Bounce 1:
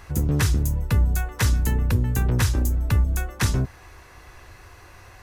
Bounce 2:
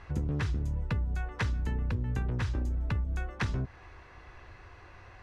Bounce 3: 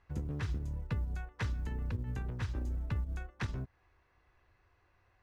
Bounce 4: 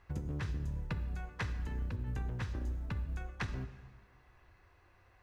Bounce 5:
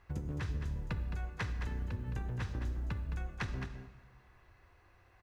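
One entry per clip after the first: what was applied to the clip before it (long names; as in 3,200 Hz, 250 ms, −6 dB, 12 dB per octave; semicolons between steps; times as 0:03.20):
low-pass filter 3,400 Hz 12 dB per octave; downward compressor, threshold −23 dBFS, peak gain reduction 8.5 dB; level −4.5 dB
in parallel at +1 dB: brickwall limiter −29.5 dBFS, peak gain reduction 10 dB; on the sum: floating-point word with a short mantissa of 6 bits; expander for the loud parts 2.5 to 1, over −36 dBFS; level −6 dB
downward compressor, threshold −40 dBFS, peak gain reduction 10 dB; dense smooth reverb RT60 1.5 s, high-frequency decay 0.85×, DRR 9.5 dB; level +5 dB
single-tap delay 215 ms −8.5 dB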